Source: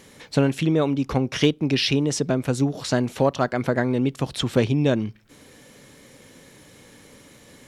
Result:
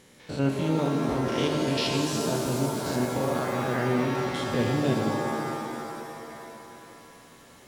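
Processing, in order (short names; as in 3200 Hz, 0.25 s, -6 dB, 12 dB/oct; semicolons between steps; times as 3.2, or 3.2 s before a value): stepped spectrum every 0.1 s; shimmer reverb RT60 2.8 s, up +7 st, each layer -2 dB, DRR 2.5 dB; gain -5.5 dB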